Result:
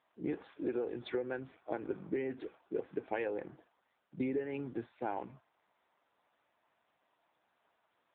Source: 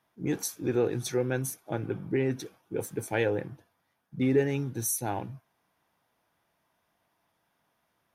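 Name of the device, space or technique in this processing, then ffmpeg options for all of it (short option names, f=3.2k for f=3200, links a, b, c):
voicemail: -filter_complex "[0:a]asplit=3[a][b][c];[a]afade=t=out:st=1.12:d=0.02[d];[b]lowpass=9.2k,afade=t=in:st=1.12:d=0.02,afade=t=out:st=1.96:d=0.02[e];[c]afade=t=in:st=1.96:d=0.02[f];[d][e][f]amix=inputs=3:normalize=0,highpass=310,lowpass=3k,acompressor=threshold=-34dB:ratio=10,volume=2.5dB" -ar 8000 -c:a libopencore_amrnb -b:a 6700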